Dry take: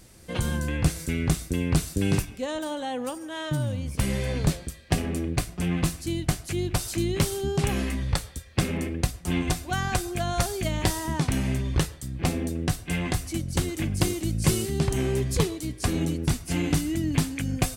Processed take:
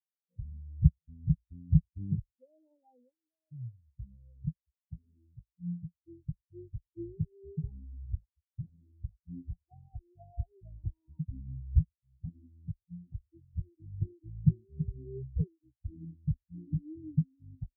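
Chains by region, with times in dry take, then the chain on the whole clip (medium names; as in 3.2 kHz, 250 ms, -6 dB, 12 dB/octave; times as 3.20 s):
3.09–6.08 s: high-pass 44 Hz + feedback comb 59 Hz, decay 0.17 s, mix 40%
8.06–9.21 s: hum notches 50/100/150/200/250/300/350/400/450/500 Hz + phase dispersion highs, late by 103 ms, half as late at 430 Hz
whole clip: steep low-pass 950 Hz 96 dB/octave; bass shelf 110 Hz +3.5 dB; spectral contrast expander 4:1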